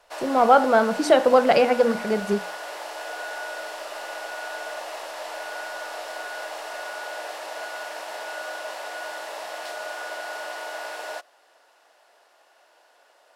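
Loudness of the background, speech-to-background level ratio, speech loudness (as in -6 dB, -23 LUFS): -33.5 LUFS, 14.0 dB, -19.5 LUFS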